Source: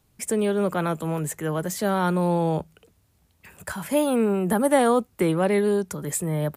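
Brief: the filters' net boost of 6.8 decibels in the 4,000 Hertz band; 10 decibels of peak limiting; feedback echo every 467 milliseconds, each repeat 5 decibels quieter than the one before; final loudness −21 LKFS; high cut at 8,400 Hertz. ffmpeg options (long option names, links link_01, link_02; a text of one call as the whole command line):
ffmpeg -i in.wav -af "lowpass=8400,equalizer=frequency=4000:width_type=o:gain=9,alimiter=limit=-17.5dB:level=0:latency=1,aecho=1:1:467|934|1401|1868|2335|2802|3269:0.562|0.315|0.176|0.0988|0.0553|0.031|0.0173,volume=4.5dB" out.wav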